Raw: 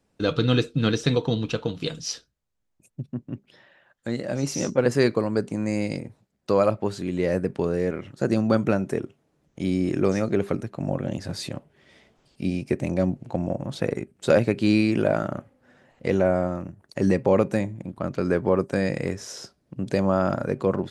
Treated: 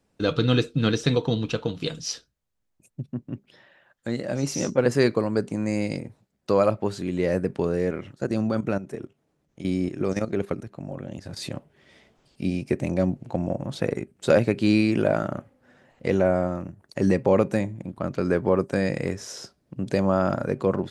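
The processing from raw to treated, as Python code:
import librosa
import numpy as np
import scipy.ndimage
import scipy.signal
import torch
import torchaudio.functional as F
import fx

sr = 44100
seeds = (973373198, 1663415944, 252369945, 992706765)

y = fx.level_steps(x, sr, step_db=12, at=(8.13, 11.42))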